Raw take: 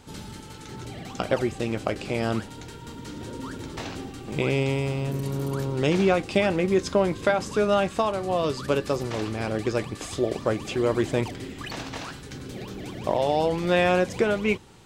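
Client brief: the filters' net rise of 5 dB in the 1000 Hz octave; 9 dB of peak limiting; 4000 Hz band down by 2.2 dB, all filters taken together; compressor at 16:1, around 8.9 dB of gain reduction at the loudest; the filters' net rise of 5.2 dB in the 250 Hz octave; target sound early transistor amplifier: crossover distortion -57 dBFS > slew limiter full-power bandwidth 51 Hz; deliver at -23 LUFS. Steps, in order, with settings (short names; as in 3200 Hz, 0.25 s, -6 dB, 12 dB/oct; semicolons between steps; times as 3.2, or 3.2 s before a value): bell 250 Hz +7 dB; bell 1000 Hz +6.5 dB; bell 4000 Hz -3.5 dB; compressor 16:1, threshold -22 dBFS; limiter -18 dBFS; crossover distortion -57 dBFS; slew limiter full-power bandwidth 51 Hz; gain +7.5 dB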